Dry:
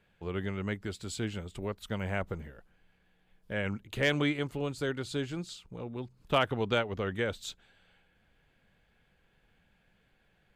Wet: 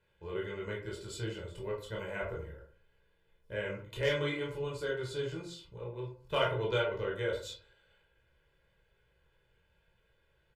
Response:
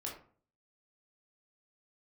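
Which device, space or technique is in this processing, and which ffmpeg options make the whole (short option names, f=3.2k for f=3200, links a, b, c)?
microphone above a desk: -filter_complex "[0:a]aecho=1:1:2:0.86[a];[1:a]atrim=start_sample=2205[b];[a][b]afir=irnorm=-1:irlink=0,volume=-4.5dB"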